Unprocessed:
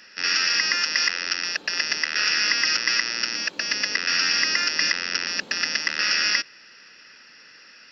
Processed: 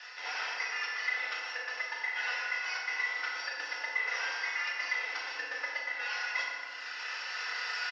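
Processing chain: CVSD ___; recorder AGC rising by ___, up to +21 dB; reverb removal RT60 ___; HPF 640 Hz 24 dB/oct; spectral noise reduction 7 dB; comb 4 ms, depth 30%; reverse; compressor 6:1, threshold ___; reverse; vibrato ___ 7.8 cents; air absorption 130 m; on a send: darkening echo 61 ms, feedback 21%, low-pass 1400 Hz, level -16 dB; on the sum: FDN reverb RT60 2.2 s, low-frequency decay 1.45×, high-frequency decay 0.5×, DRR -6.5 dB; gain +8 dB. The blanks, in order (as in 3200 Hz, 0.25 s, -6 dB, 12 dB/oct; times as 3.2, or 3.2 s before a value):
32 kbps, 11 dB/s, 1.1 s, -45 dBFS, 6.9 Hz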